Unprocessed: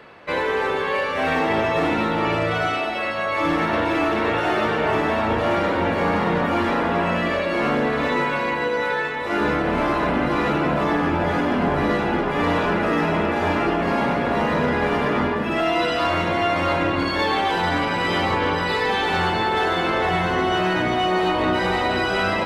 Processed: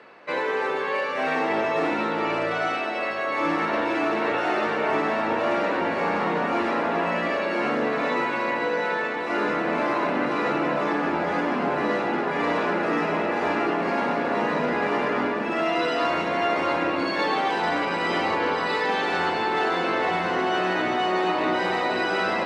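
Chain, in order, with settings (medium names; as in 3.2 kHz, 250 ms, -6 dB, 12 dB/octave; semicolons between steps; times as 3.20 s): band-pass 230–7900 Hz; peaking EQ 3.3 kHz -5.5 dB 0.24 oct; on a send: echo that smears into a reverb 1527 ms, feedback 77%, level -12 dB; on the sum: trim -3 dB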